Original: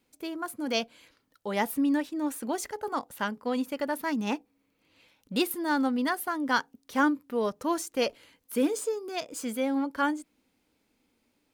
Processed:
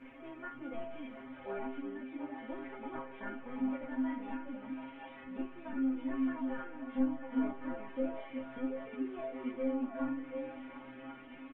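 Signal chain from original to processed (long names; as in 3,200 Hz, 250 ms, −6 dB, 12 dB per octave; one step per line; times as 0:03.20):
linear delta modulator 16 kbit/s, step −39.5 dBFS
low-pass filter 2,300 Hz 12 dB per octave
comb filter 3.4 ms, depth 43%
dynamic equaliser 260 Hz, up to −4 dB, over −40 dBFS, Q 5.7
downward compressor 16 to 1, threshold −28 dBFS, peak gain reduction 9 dB
stiff-string resonator 130 Hz, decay 0.48 s, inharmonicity 0.002
multi-voice chorus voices 2, 0.34 Hz, delay 19 ms, depth 5 ms
on a send: echo through a band-pass that steps 365 ms, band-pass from 260 Hz, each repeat 1.4 octaves, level −0.5 dB
on the sum: level +9.5 dB
Opus 24 kbit/s 48,000 Hz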